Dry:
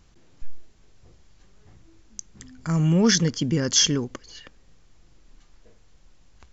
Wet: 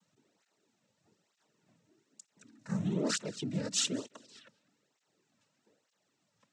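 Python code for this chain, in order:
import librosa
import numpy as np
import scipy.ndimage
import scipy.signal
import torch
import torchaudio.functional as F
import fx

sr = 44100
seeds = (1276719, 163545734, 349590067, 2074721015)

p1 = scipy.signal.sosfilt(scipy.signal.butter(2, 150.0, 'highpass', fs=sr, output='sos'), x)
p2 = p1 + fx.echo_feedback(p1, sr, ms=201, feedback_pct=21, wet_db=-22, dry=0)
p3 = fx.noise_vocoder(p2, sr, seeds[0], bands=12)
p4 = fx.flanger_cancel(p3, sr, hz=1.1, depth_ms=3.0)
y = p4 * librosa.db_to_amplitude(-9.0)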